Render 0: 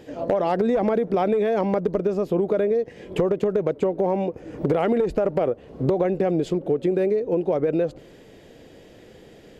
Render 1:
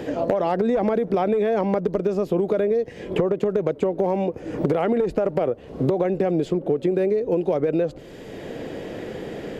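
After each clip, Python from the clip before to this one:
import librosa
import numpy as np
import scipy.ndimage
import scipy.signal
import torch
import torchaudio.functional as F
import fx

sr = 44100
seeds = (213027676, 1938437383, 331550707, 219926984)

y = fx.band_squash(x, sr, depth_pct=70)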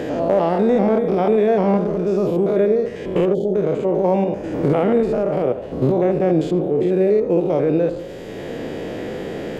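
y = fx.spec_steps(x, sr, hold_ms=100)
y = fx.echo_tape(y, sr, ms=74, feedback_pct=73, wet_db=-11.0, lp_hz=2000.0, drive_db=14.0, wow_cents=39)
y = fx.spec_box(y, sr, start_s=3.34, length_s=0.21, low_hz=890.0, high_hz=3000.0, gain_db=-24)
y = y * librosa.db_to_amplitude(6.0)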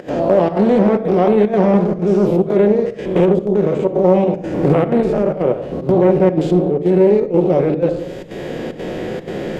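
y = fx.volume_shaper(x, sr, bpm=124, per_beat=1, depth_db=-19, release_ms=80.0, shape='slow start')
y = fx.room_shoebox(y, sr, seeds[0], volume_m3=2000.0, walls='furnished', distance_m=0.99)
y = fx.doppler_dist(y, sr, depth_ms=0.33)
y = y * librosa.db_to_amplitude(3.0)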